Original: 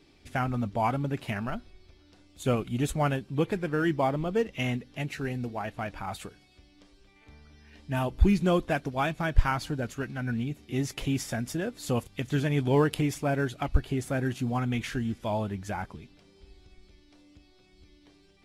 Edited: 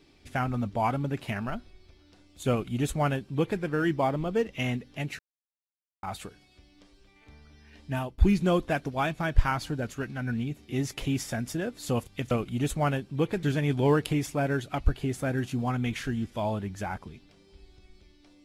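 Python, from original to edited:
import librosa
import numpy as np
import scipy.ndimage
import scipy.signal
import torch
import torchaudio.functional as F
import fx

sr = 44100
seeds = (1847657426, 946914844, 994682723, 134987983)

y = fx.edit(x, sr, fx.duplicate(start_s=2.5, length_s=1.12, to_s=12.31),
    fx.silence(start_s=5.19, length_s=0.84),
    fx.fade_out_to(start_s=7.92, length_s=0.26, floor_db=-20.5), tone=tone)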